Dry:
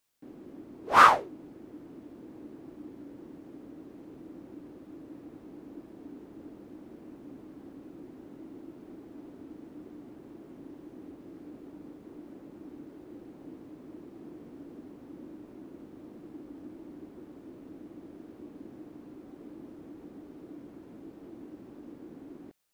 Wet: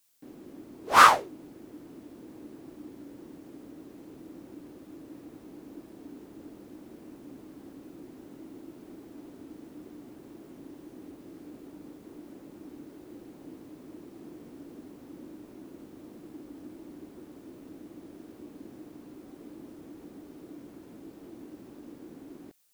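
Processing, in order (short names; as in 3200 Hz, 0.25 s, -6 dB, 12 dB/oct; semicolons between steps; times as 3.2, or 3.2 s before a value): high shelf 3600 Hz +11 dB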